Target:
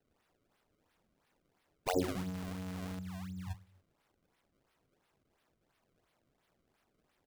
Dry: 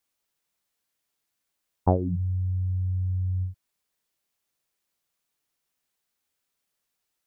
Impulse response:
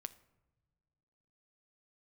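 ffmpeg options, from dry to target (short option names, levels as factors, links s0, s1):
-filter_complex "[0:a]asettb=1/sr,asplit=3[s0][s1][s2];[s0]atrim=end=2.044[s3];[s1]atrim=start=2.04:end=2.99,asetpts=PTS-STARTPTS,afade=t=in:d=0.004:c=qsin,afade=t=out:st=0.946:d=0.004:c=qsin,aeval=exprs='val(0)+0.5*0.00944*sgn(val(0))':c=same[s4];[s2]atrim=start=2.986[s5];[s3][s4]acrossfade=d=0.004:c1=hsin:c2=qsin[s6];[s6][s5]acrossfade=d=0.004:c1=qsin:c2=hsin,aresample=32000,aresample=44100,acrossover=split=540[s7][s8];[s8]acompressor=threshold=0.00708:ratio=6[s9];[s7][s9]amix=inputs=2:normalize=0,aecho=1:1:71|142|213|284:0.126|0.0604|0.029|0.0139,afftfilt=real='re*lt(hypot(re,im),0.178)':imag='im*lt(hypot(re,im),0.178)':win_size=1024:overlap=0.75,acrusher=samples=29:mix=1:aa=0.000001:lfo=1:lforange=46.4:lforate=2.9,volume=1.78"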